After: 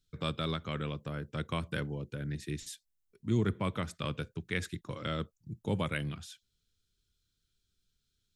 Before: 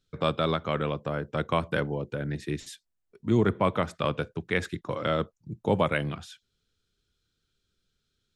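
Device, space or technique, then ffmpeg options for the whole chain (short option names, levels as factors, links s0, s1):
smiley-face EQ: -af "lowshelf=f=100:g=6,equalizer=f=720:t=o:w=1.7:g=-8.5,highshelf=f=5600:g=9,volume=0.531"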